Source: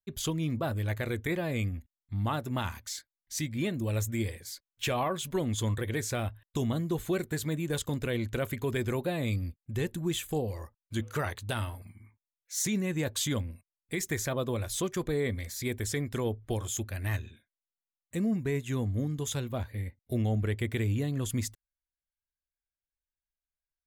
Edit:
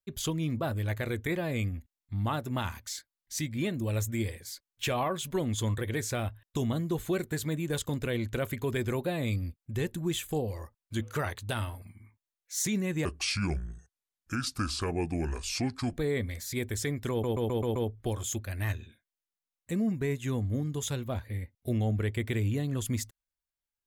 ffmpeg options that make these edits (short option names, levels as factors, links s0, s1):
-filter_complex "[0:a]asplit=8[s0][s1][s2][s3][s4][s5][s6][s7];[s0]atrim=end=13.054[s8];[s1]atrim=start=13.05:end=15.07,asetpts=PTS-STARTPTS,asetrate=30429,aresample=44100,atrim=end_sample=129104,asetpts=PTS-STARTPTS[s9];[s2]atrim=start=15.066:end=16.332[s10];[s3]atrim=start=16.198:end=16.332[s11];[s4]atrim=start=16.198:end=16.332[s12];[s5]atrim=start=16.198:end=16.332[s13];[s6]atrim=start=16.198:end=16.332[s14];[s7]atrim=start=16.198[s15];[s8][s9]acrossfade=d=0.004:c1=hsin:c2=hsin[s16];[s16][s10]acrossfade=d=0.004:c1=hsin:c2=hsin[s17];[s17][s11]acrossfade=d=0.004:c1=hsin:c2=hsin[s18];[s18][s12]acrossfade=d=0.004:c1=hsin:c2=hsin[s19];[s19][s13]acrossfade=d=0.004:c1=hsin:c2=hsin[s20];[s20][s14]acrossfade=d=0.004:c1=hsin:c2=hsin[s21];[s21][s15]acrossfade=d=0.004:c1=hsin:c2=hsin"